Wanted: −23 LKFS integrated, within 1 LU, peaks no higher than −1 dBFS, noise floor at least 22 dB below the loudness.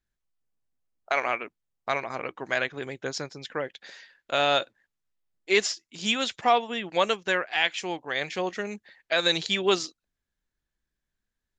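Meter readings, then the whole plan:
integrated loudness −27.0 LKFS; sample peak −8.0 dBFS; target loudness −23.0 LKFS
→ level +4 dB

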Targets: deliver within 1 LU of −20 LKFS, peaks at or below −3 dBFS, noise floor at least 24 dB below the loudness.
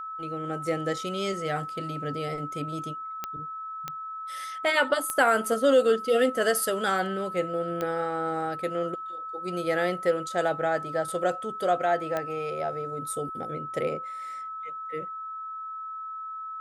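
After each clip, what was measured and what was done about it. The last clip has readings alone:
number of clicks 5; interfering tone 1,300 Hz; level of the tone −34 dBFS; integrated loudness −28.5 LKFS; sample peak −10.5 dBFS; target loudness −20.0 LKFS
→ click removal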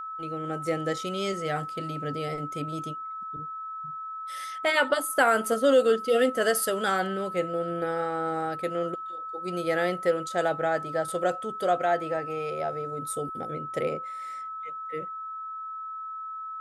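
number of clicks 0; interfering tone 1,300 Hz; level of the tone −34 dBFS
→ notch filter 1,300 Hz, Q 30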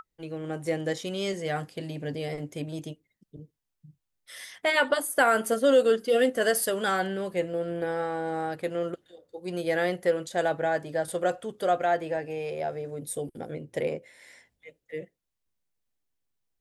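interfering tone none found; integrated loudness −28.0 LKFS; sample peak −10.0 dBFS; target loudness −20.0 LKFS
→ level +8 dB
brickwall limiter −3 dBFS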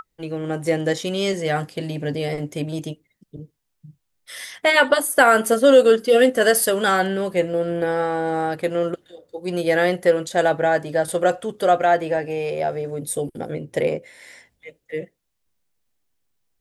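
integrated loudness −20.0 LKFS; sample peak −3.0 dBFS; background noise floor −74 dBFS

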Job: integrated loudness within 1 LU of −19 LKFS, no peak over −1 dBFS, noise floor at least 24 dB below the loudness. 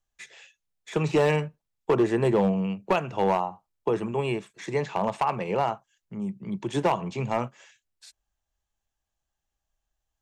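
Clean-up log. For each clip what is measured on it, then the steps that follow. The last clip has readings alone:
share of clipped samples 0.7%; peaks flattened at −15.5 dBFS; integrated loudness −27.0 LKFS; sample peak −15.5 dBFS; target loudness −19.0 LKFS
→ clipped peaks rebuilt −15.5 dBFS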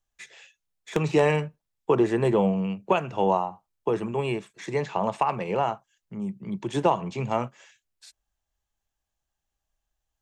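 share of clipped samples 0.0%; integrated loudness −26.5 LKFS; sample peak −6.5 dBFS; target loudness −19.0 LKFS
→ level +7.5 dB
brickwall limiter −1 dBFS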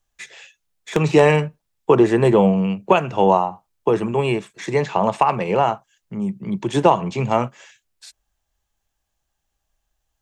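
integrated loudness −19.0 LKFS; sample peak −1.0 dBFS; background noise floor −77 dBFS

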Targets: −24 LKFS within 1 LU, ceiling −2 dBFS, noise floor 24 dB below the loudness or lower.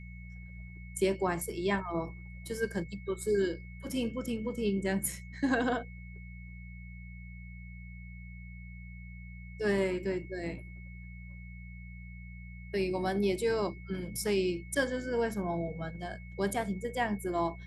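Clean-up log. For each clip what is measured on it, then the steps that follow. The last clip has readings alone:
mains hum 60 Hz; hum harmonics up to 180 Hz; level of the hum −44 dBFS; interfering tone 2,200 Hz; level of the tone −53 dBFS; integrated loudness −33.0 LKFS; sample peak −17.0 dBFS; target loudness −24.0 LKFS
→ hum removal 60 Hz, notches 3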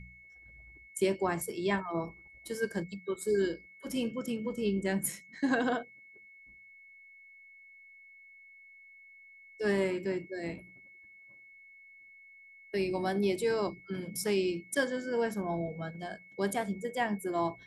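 mains hum none found; interfering tone 2,200 Hz; level of the tone −53 dBFS
→ notch filter 2,200 Hz, Q 30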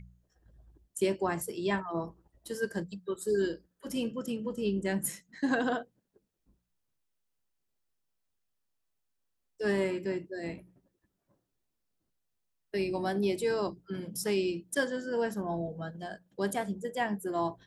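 interfering tone none found; integrated loudness −33.0 LKFS; sample peak −16.5 dBFS; target loudness −24.0 LKFS
→ level +9 dB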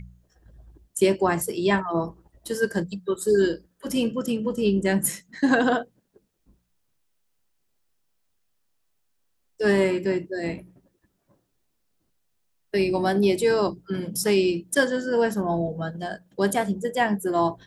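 integrated loudness −24.5 LKFS; sample peak −7.5 dBFS; background noise floor −72 dBFS

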